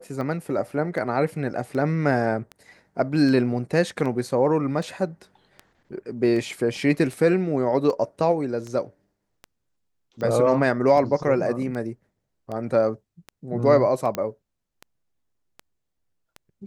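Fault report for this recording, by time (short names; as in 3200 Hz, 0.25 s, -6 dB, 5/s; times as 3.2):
tick 78 rpm -22 dBFS
14.15 pop -12 dBFS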